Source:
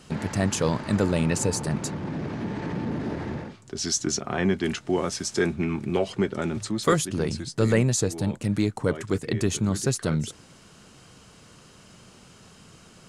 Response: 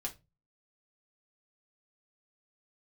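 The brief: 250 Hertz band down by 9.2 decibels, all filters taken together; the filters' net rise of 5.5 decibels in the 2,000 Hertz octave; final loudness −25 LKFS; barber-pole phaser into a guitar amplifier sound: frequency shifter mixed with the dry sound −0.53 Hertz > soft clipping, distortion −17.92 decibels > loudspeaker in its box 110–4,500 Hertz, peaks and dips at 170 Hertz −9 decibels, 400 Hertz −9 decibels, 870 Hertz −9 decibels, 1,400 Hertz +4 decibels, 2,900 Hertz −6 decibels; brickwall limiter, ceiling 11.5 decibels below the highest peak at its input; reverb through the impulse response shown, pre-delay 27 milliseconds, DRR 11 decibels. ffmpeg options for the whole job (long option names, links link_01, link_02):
-filter_complex "[0:a]equalizer=frequency=250:width_type=o:gain=-7.5,equalizer=frequency=2000:width_type=o:gain=6.5,alimiter=limit=-20dB:level=0:latency=1,asplit=2[link_01][link_02];[1:a]atrim=start_sample=2205,adelay=27[link_03];[link_02][link_03]afir=irnorm=-1:irlink=0,volume=-11dB[link_04];[link_01][link_04]amix=inputs=2:normalize=0,asplit=2[link_05][link_06];[link_06]afreqshift=-0.53[link_07];[link_05][link_07]amix=inputs=2:normalize=1,asoftclip=threshold=-26dB,highpass=110,equalizer=frequency=170:width_type=q:width=4:gain=-9,equalizer=frequency=400:width_type=q:width=4:gain=-9,equalizer=frequency=870:width_type=q:width=4:gain=-9,equalizer=frequency=1400:width_type=q:width=4:gain=4,equalizer=frequency=2900:width_type=q:width=4:gain=-6,lowpass=frequency=4500:width=0.5412,lowpass=frequency=4500:width=1.3066,volume=14dB"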